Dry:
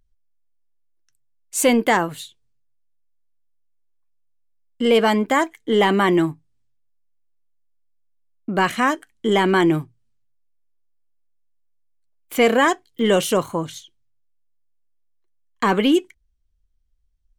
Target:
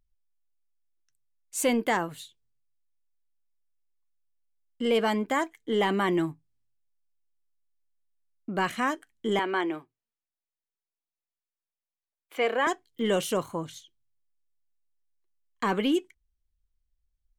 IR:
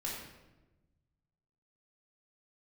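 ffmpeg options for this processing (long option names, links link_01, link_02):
-filter_complex "[0:a]asettb=1/sr,asplit=3[link_01][link_02][link_03];[link_01]atrim=end=9.394[link_04];[link_02]atrim=start=9.39:end=12.67,asetpts=PTS-STARTPTS,afade=type=in:duration=0.004:curve=qsin,afade=type=out:start_time=3.276:duration=0.004:curve=qsin,acrossover=split=320 4000:gain=0.0708 1 0.224[link_05][link_06][link_07];[link_05][link_06][link_07]amix=inputs=3:normalize=0[link_08];[link_03]atrim=start=12.666[link_09];[link_04][link_08]acrossfade=duration=0.004:curve1=hsin:curve2=qsin[link_10];[link_10][link_09]acrossfade=duration=0.004:curve1=qsin:curve2=hsin,volume=-8.5dB"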